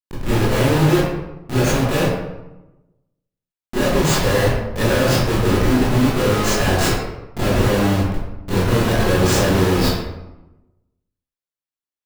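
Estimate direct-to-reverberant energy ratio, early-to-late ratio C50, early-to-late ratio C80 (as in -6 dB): -11.0 dB, -1.0 dB, 2.5 dB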